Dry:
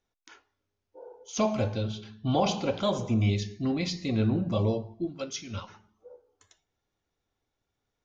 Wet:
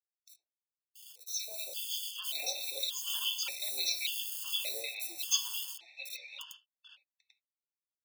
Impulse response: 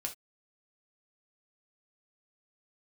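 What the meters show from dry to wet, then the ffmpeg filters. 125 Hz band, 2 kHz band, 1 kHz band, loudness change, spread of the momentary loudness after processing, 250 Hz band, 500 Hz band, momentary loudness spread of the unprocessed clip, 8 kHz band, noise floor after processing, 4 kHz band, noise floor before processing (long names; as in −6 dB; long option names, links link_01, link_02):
below −40 dB, 0.0 dB, −19.5 dB, −5.0 dB, 14 LU, below −35 dB, −21.0 dB, 10 LU, can't be measured, below −85 dBFS, +5.5 dB, −84 dBFS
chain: -filter_complex "[0:a]acrusher=bits=7:mix=0:aa=0.000001,aeval=exprs='0.224*(cos(1*acos(clip(val(0)/0.224,-1,1)))-cos(1*PI/2))+0.0447*(cos(3*acos(clip(val(0)/0.224,-1,1)))-cos(3*PI/2))':channel_layout=same,highshelf=frequency=2200:width_type=q:width=3:gain=11.5,acompressor=threshold=-29dB:ratio=6,flanger=delay=1.9:depth=8.8:regen=53:speed=0.35:shape=sinusoidal,highpass=frequency=460:width=0.5412,highpass=frequency=460:width=1.3066,dynaudnorm=framelen=210:gausssize=13:maxgain=15.5dB,aderivative,acrossover=split=720|3100[link_01][link_02][link_03];[link_01]adelay=80[link_04];[link_02]adelay=790[link_05];[link_04][link_05][link_03]amix=inputs=3:normalize=0,asplit=2[link_06][link_07];[1:a]atrim=start_sample=2205,lowpass=2600[link_08];[link_07][link_08]afir=irnorm=-1:irlink=0,volume=2dB[link_09];[link_06][link_09]amix=inputs=2:normalize=0,afftfilt=real='re*gt(sin(2*PI*0.86*pts/sr)*(1-2*mod(floor(b*sr/1024/890),2)),0)':imag='im*gt(sin(2*PI*0.86*pts/sr)*(1-2*mod(floor(b*sr/1024/890),2)),0)':win_size=1024:overlap=0.75"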